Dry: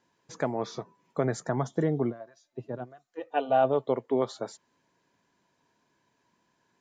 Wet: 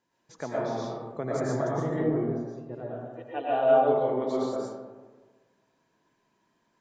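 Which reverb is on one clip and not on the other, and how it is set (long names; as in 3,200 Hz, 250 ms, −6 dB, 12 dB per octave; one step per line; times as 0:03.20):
comb and all-pass reverb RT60 1.4 s, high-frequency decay 0.4×, pre-delay 75 ms, DRR −6.5 dB
level −7 dB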